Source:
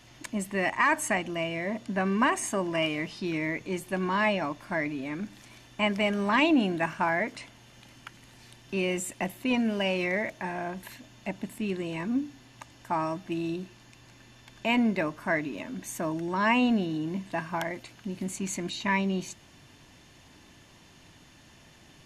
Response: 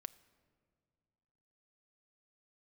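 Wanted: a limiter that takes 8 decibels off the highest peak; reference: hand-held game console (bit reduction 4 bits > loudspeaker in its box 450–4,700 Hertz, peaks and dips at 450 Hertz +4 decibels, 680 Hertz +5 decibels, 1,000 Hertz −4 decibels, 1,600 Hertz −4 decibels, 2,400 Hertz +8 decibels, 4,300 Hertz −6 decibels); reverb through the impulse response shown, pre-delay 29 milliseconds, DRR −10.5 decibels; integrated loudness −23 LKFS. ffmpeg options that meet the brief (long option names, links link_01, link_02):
-filter_complex "[0:a]alimiter=limit=-20.5dB:level=0:latency=1,asplit=2[link_01][link_02];[1:a]atrim=start_sample=2205,adelay=29[link_03];[link_02][link_03]afir=irnorm=-1:irlink=0,volume=15.5dB[link_04];[link_01][link_04]amix=inputs=2:normalize=0,acrusher=bits=3:mix=0:aa=0.000001,highpass=450,equalizer=frequency=450:width_type=q:width=4:gain=4,equalizer=frequency=680:width_type=q:width=4:gain=5,equalizer=frequency=1000:width_type=q:width=4:gain=-4,equalizer=frequency=1600:width_type=q:width=4:gain=-4,equalizer=frequency=2400:width_type=q:width=4:gain=8,equalizer=frequency=4300:width_type=q:width=4:gain=-6,lowpass=frequency=4700:width=0.5412,lowpass=frequency=4700:width=1.3066,volume=-2.5dB"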